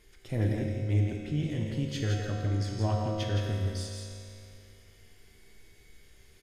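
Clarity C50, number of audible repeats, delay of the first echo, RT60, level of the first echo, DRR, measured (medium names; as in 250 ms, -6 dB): -0.5 dB, 1, 167 ms, 2.7 s, -5.0 dB, -2.0 dB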